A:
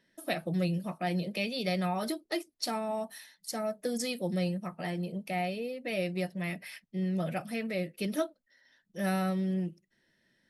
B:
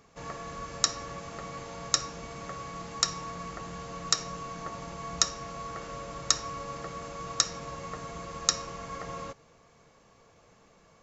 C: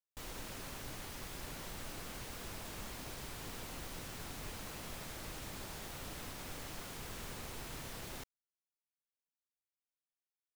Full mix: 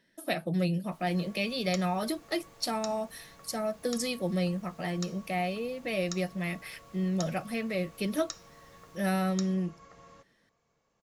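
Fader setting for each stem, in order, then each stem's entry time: +1.5, -15.5, -16.0 dB; 0.00, 0.90, 0.75 s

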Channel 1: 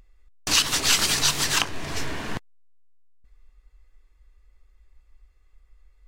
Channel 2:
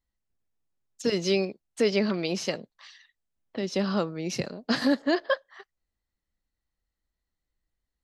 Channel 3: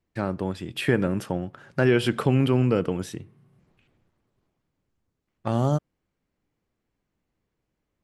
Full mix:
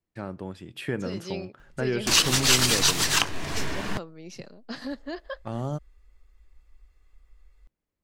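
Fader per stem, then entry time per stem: 0.0, -11.0, -8.0 dB; 1.60, 0.00, 0.00 s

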